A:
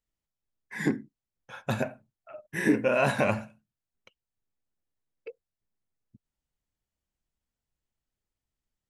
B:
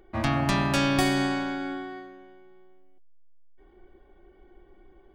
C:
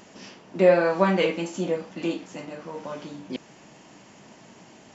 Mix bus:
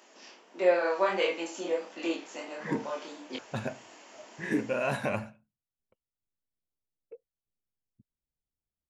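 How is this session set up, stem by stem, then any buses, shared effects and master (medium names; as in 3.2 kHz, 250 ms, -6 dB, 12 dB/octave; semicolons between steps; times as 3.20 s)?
-8.5 dB, 1.85 s, no send, level-controlled noise filter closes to 710 Hz, open at -23 dBFS
mute
+0.5 dB, 0.00 s, no send, chorus 1.5 Hz, depth 6.8 ms; Bessel high-pass 440 Hz, order 8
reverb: none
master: gain riding within 3 dB 2 s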